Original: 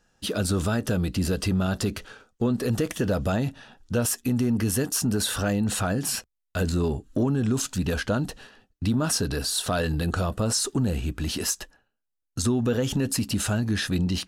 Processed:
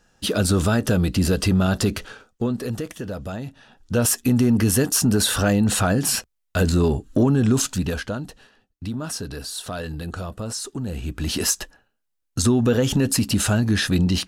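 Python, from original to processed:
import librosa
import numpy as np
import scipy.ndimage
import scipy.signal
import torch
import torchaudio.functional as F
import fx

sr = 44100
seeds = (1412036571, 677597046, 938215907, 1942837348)

y = fx.gain(x, sr, db=fx.line((2.07, 5.5), (2.99, -6.0), (3.49, -6.0), (4.07, 6.0), (7.62, 6.0), (8.24, -5.0), (10.8, -5.0), (11.4, 5.5)))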